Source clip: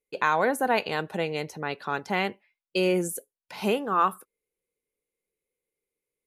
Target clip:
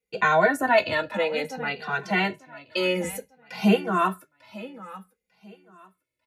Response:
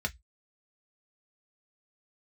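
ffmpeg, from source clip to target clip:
-filter_complex "[0:a]asettb=1/sr,asplit=3[a][b][c];[a]atrim=end=0.924[d];[b]atrim=start=0.92:end=3.04,asetpts=PTS-STARTPTS,afade=t=in:d=0.004:c=qsin,afade=t=out:st=2.116:d=0.004:c=qsin,highpass=f=260:p=1[e];[c]atrim=start=3.036[f];[d][e]acrossfade=d=0.004:c1=hsin:c2=qsin[g];[g][f]acrossfade=d=0.004:c1=qsin:c2=hsin,aecho=1:1:896|1792|2688:0.141|0.0381|0.0103[h];[1:a]atrim=start_sample=2205[i];[h][i]afir=irnorm=-1:irlink=0,asplit=2[j][k];[k]adelay=2.1,afreqshift=-0.57[l];[j][l]amix=inputs=2:normalize=1,volume=2.5dB"

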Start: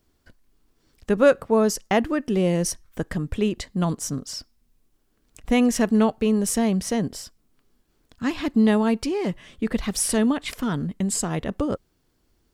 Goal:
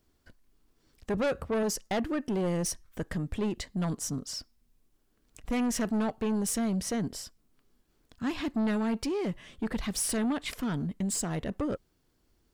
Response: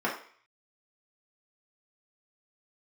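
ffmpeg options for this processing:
-filter_complex "[0:a]asettb=1/sr,asplit=3[a][b][c];[a]atrim=end=1.144[d];[b]atrim=start=1.14:end=1.63,asetpts=PTS-STARTPTS,afade=t=in:d=0.004:c=qsin,afade=t=out:st=0.486:d=0.004:c=qsin,equalizer=f=67:w=1.1:g=15[e];[c]atrim=start=1.626[f];[d][e]acrossfade=d=0.004:c1=hsin:c2=qsin[g];[g][f]acrossfade=d=0.004:c1=qsin:c2=hsin,asoftclip=type=tanh:threshold=-21.5dB,volume=-3.5dB"

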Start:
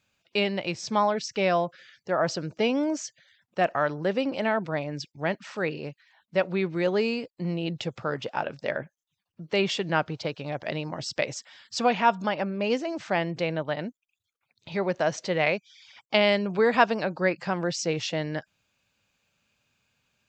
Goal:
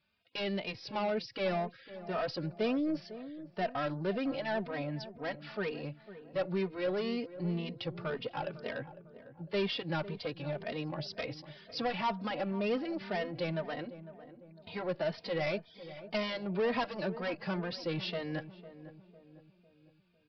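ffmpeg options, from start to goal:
-filter_complex "[0:a]aresample=11025,asoftclip=type=tanh:threshold=-24.5dB,aresample=44100,asplit=2[a][b];[b]adelay=502,lowpass=f=920:p=1,volume=-13dB,asplit=2[c][d];[d]adelay=502,lowpass=f=920:p=1,volume=0.5,asplit=2[e][f];[f]adelay=502,lowpass=f=920:p=1,volume=0.5,asplit=2[g][h];[h]adelay=502,lowpass=f=920:p=1,volume=0.5,asplit=2[i][j];[j]adelay=502,lowpass=f=920:p=1,volume=0.5[k];[a][c][e][g][i][k]amix=inputs=6:normalize=0,asplit=2[l][m];[m]adelay=3,afreqshift=2[n];[l][n]amix=inputs=2:normalize=1,volume=-1.5dB"

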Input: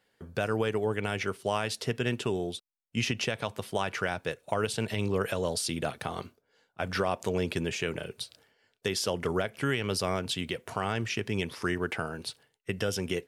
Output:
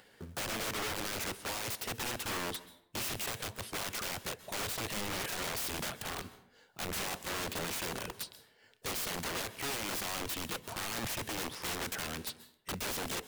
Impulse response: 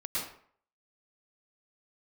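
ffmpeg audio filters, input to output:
-filter_complex "[0:a]acrusher=bits=4:mode=log:mix=0:aa=0.000001,aeval=exprs='(mod(33.5*val(0)+1,2)-1)/33.5':c=same,acompressor=mode=upward:threshold=-50dB:ratio=2.5,asplit=2[a][b];[1:a]atrim=start_sample=2205,asetrate=35721,aresample=44100,highshelf=f=9.2k:g=5.5[c];[b][c]afir=irnorm=-1:irlink=0,volume=-21.5dB[d];[a][d]amix=inputs=2:normalize=0,volume=-1.5dB"

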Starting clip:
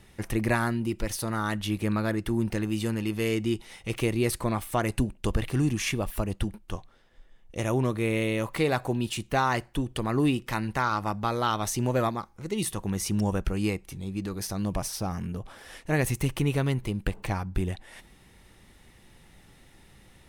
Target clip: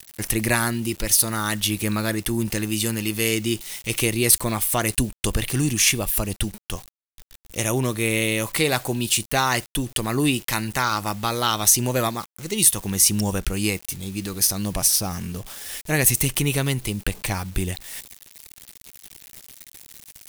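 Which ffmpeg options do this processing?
-filter_complex "[0:a]highshelf=f=3.9k:g=-3,aeval=exprs='val(0)*gte(abs(val(0)),0.00355)':c=same,acrossover=split=1300[a][b];[b]crystalizer=i=6:c=0[c];[a][c]amix=inputs=2:normalize=0,volume=2.5dB"

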